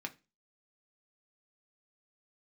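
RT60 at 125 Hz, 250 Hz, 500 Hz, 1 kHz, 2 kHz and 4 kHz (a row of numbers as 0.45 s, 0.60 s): 0.35 s, 0.35 s, 0.30 s, 0.25 s, 0.30 s, 0.30 s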